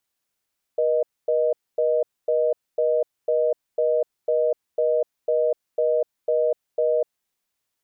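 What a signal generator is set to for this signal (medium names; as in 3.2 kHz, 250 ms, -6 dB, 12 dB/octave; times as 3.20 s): call progress tone reorder tone, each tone -20.5 dBFS 6.31 s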